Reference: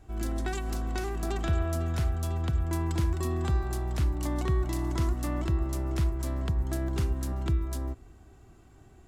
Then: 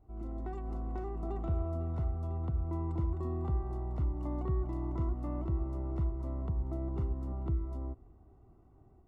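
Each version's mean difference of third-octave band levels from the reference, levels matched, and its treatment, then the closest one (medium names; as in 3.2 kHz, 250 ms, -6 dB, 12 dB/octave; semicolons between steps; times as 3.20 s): 8.0 dB: level rider gain up to 3.5 dB; Savitzky-Golay filter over 65 samples; trim -9 dB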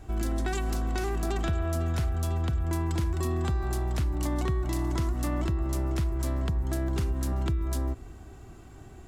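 2.0 dB: in parallel at +2.5 dB: peak limiter -31 dBFS, peak gain reduction 12 dB; on the sum: compression, threshold -24 dBFS, peak gain reduction 5 dB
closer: second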